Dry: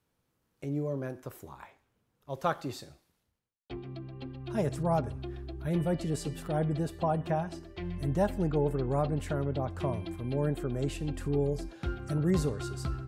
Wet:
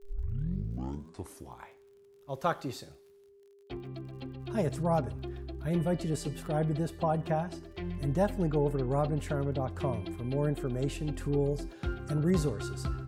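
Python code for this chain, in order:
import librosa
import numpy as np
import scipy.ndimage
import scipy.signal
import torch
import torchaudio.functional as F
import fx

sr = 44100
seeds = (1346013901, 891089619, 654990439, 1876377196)

y = fx.tape_start_head(x, sr, length_s=1.68)
y = fx.dmg_crackle(y, sr, seeds[0], per_s=44.0, level_db=-53.0)
y = y + 10.0 ** (-56.0 / 20.0) * np.sin(2.0 * np.pi * 400.0 * np.arange(len(y)) / sr)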